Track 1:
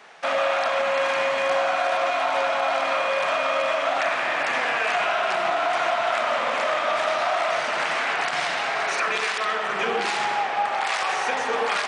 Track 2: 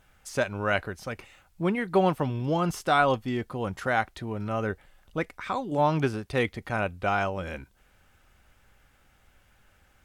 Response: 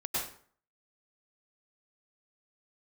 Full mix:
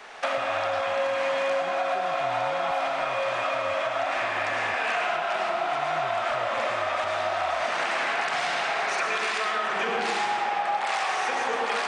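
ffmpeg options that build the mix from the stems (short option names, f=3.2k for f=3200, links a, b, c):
-filter_complex "[0:a]highpass=200,volume=0.5dB,asplit=2[a][b];[b]volume=-4.5dB[c];[1:a]aecho=1:1:2.1:0.76,volume=-16dB,asplit=2[d][e];[e]apad=whole_len=523714[f];[a][f]sidechaincompress=threshold=-53dB:ratio=8:attack=16:release=189[g];[2:a]atrim=start_sample=2205[h];[c][h]afir=irnorm=-1:irlink=0[i];[g][d][i]amix=inputs=3:normalize=0,acrossover=split=160[j][k];[k]acompressor=threshold=-25dB:ratio=4[l];[j][l]amix=inputs=2:normalize=0"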